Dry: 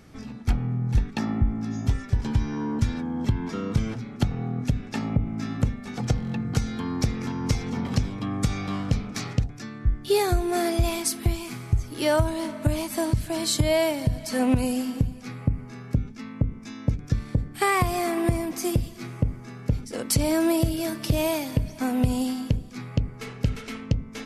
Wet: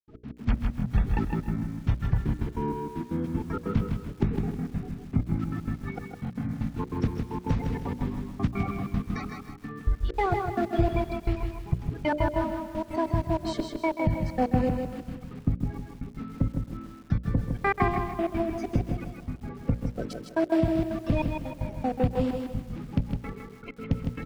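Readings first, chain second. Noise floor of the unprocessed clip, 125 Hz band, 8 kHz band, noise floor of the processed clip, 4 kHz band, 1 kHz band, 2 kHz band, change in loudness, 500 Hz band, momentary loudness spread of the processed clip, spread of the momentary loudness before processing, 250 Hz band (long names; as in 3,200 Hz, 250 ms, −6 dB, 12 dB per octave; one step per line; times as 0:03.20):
−41 dBFS, −3.5 dB, below −20 dB, −46 dBFS, −13.0 dB, −0.5 dB, −3.5 dB, −3.0 dB, −3.0 dB, 10 LU, 7 LU, −2.5 dB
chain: spectral magnitudes quantised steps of 30 dB
far-end echo of a speakerphone 270 ms, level −15 dB
gate pattern ".x.x.xx...x.xx" 193 BPM −60 dB
in parallel at −4 dB: asymmetric clip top −17.5 dBFS
on the sum: low-pass filter 2,100 Hz 12 dB per octave
mains-hum notches 60/120/180/240/300/360/420/480/540/600 Hz
on a send: repeating echo 158 ms, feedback 34%, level −5 dB
on the sum: feedback echo at a low word length 133 ms, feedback 35%, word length 7 bits, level −11.5 dB
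level −4 dB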